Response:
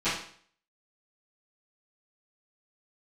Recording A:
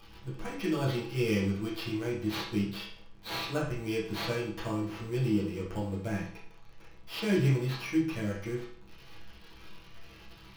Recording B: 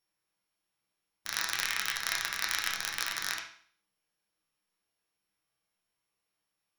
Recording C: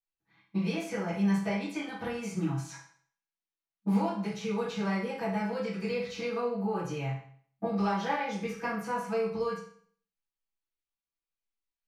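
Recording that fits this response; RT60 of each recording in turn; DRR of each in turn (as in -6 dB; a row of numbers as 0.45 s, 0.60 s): C; 0.55 s, 0.55 s, 0.55 s; -8.5 dB, -1.5 dB, -18.5 dB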